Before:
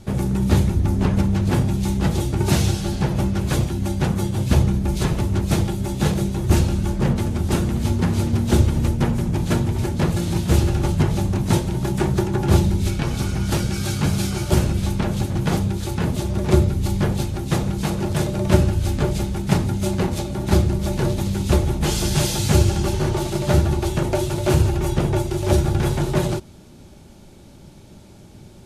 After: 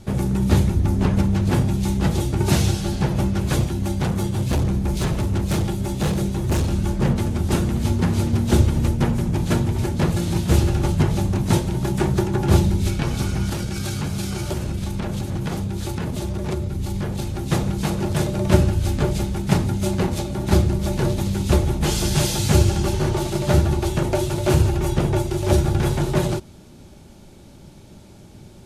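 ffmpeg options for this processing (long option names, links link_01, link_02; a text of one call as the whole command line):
ffmpeg -i in.wav -filter_complex "[0:a]asettb=1/sr,asplit=3[link_01][link_02][link_03];[link_01]atrim=end=3.724[link_04];[link_02]atrim=start=3.72:end=6.73,asetpts=PTS-STARTPTS,afade=type=in:duration=0.004:curve=qsin,afade=type=out:start_time=3.006:duration=0.004:curve=qsin,asoftclip=type=hard:threshold=-16.5dB[link_05];[link_03]atrim=start=6.726[link_06];[link_04][link_05]acrossfade=duration=0.004:curve1=hsin:curve2=qsin[link_07];[link_07][link_06]acrossfade=duration=0.004:curve1=qsin:curve2=hsin,asettb=1/sr,asplit=3[link_08][link_09][link_10];[link_08]atrim=end=13.494[link_11];[link_09]atrim=start=13.49:end=17.44,asetpts=PTS-STARTPTS,afade=type=in:duration=0.004:curve=qsin,afade=type=out:start_time=3.946:duration=0.004:curve=qsin,acompressor=threshold=-21dB:ratio=6:attack=3.2:release=140:knee=1:detection=peak[link_12];[link_10]atrim=start=17.436[link_13];[link_11][link_12]acrossfade=duration=0.004:curve1=hsin:curve2=qsin[link_14];[link_14][link_13]acrossfade=duration=0.004:curve1=qsin:curve2=hsin" out.wav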